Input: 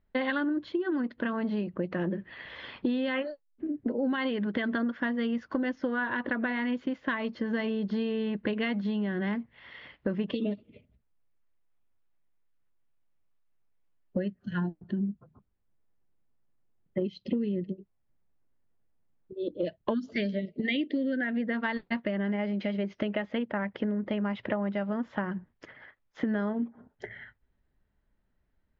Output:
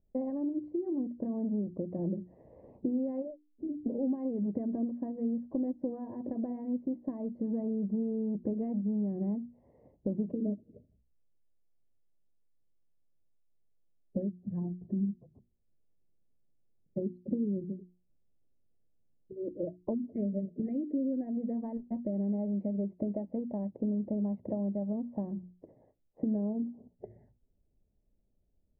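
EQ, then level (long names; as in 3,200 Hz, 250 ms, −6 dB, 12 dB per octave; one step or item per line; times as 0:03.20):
dynamic equaliser 460 Hz, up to −5 dB, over −44 dBFS, Q 1.3
inverse Chebyshev low-pass filter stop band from 1,300 Hz, stop band 40 dB
mains-hum notches 60/120/180/240/300/360 Hz
0.0 dB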